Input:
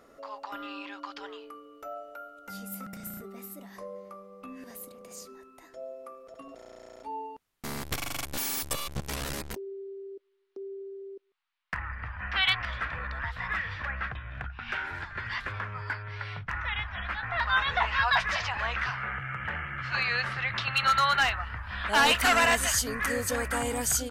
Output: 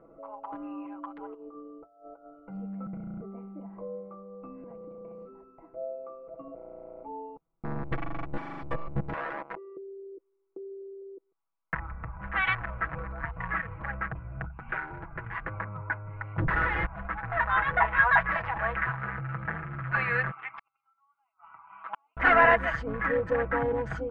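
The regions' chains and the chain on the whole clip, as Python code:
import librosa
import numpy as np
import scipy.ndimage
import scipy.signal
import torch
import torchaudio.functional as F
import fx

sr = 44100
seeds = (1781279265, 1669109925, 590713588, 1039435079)

y = fx.chain(x, sr, fx.peak_eq(hz=2400.0, db=-13.5, octaves=0.92),
    fx.over_compress(threshold_db=-48.0, ratio=-0.5), at=(1.34, 2.34))
y = fx.chain(y, sr, fx.highpass(hz=920.0, slope=12),
    fx.high_shelf(hz=2900.0, db=-11.0),
    fx.leveller(passes=3), at=(9.13, 9.77))
y = fx.chain(y, sr, fx.over_compress(threshold_db=-37.0, ratio=-1.0),
    fx.leveller(passes=5), at=(16.38, 16.86))
y = fx.chain(y, sr, fx.highpass(hz=890.0, slope=12),
    fx.fixed_phaser(hz=2600.0, stages=8),
    fx.gate_flip(shuts_db=-22.0, range_db=-40), at=(20.31, 22.17))
y = fx.wiener(y, sr, points=25)
y = scipy.signal.sosfilt(scipy.signal.cheby1(3, 1.0, 1900.0, 'lowpass', fs=sr, output='sos'), y)
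y = y + 0.72 * np.pad(y, (int(6.1 * sr / 1000.0), 0))[:len(y)]
y = F.gain(torch.from_numpy(y), 3.0).numpy()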